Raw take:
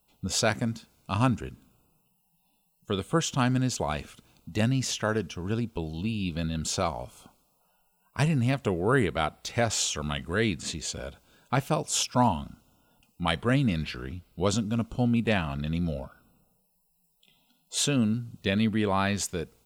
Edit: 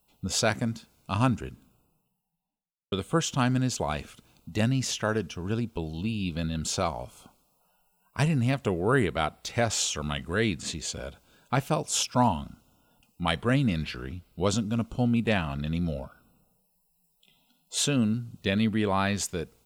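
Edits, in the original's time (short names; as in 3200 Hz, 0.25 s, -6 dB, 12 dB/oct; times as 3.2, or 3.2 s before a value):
1.48–2.92 studio fade out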